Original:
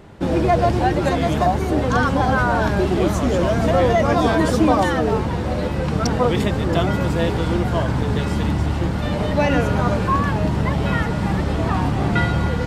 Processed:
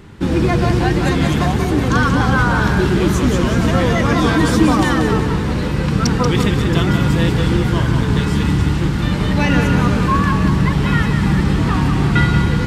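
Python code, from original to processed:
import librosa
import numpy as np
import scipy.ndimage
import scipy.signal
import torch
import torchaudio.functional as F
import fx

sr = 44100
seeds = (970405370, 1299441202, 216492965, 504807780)

p1 = fx.peak_eq(x, sr, hz=640.0, db=-13.5, octaves=0.79)
p2 = p1 + fx.echo_feedback(p1, sr, ms=184, feedback_pct=44, wet_db=-6.5, dry=0)
y = F.gain(torch.from_numpy(p2), 5.0).numpy()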